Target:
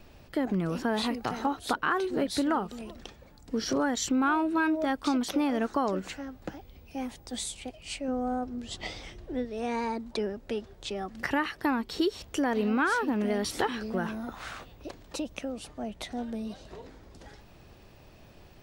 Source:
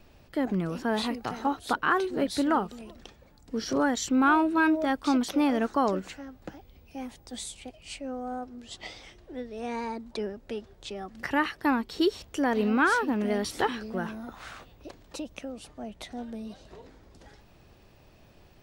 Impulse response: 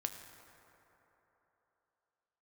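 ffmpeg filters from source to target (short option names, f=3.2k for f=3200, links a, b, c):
-filter_complex "[0:a]asettb=1/sr,asplit=3[a][b][c];[a]atrim=end=8.084[d];[b]atrim=start=8.08:end=9.45,asetpts=PTS-STARTPTS,afade=t=in:d=0.004:c=qsin,afade=t=out:st=1.366:d=0.004:c=qsin,lowshelf=f=330:g=6.5[e];[c]atrim=start=9.446[f];[d][e]acrossfade=d=0.004:c1=hsin:c2=qsin[g];[g][f]acrossfade=d=0.004:c1=qsin:c2=hsin,acompressor=threshold=-29dB:ratio=2.5,volume=3dB"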